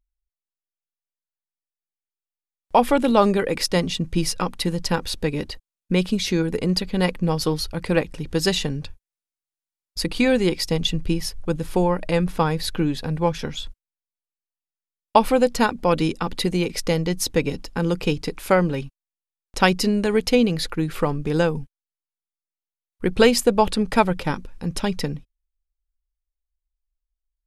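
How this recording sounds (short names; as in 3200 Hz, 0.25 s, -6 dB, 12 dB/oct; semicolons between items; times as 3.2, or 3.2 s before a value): noise floor -93 dBFS; spectral tilt -5.0 dB/oct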